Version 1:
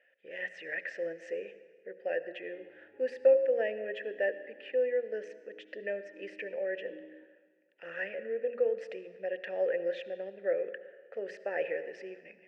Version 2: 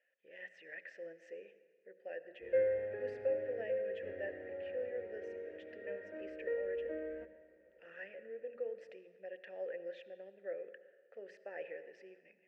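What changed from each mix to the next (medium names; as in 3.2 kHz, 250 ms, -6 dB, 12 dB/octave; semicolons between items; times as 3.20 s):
speech -12.0 dB; background: remove vowel filter u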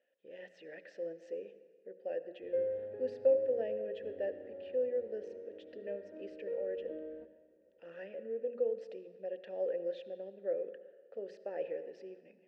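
background -10.0 dB; master: add graphic EQ 125/250/500/1000/2000/4000 Hz +7/+10/+5/+4/-10/+9 dB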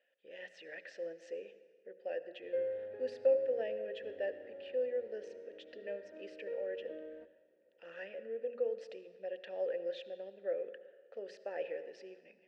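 background: send -6.0 dB; master: add tilt shelf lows -7 dB, about 640 Hz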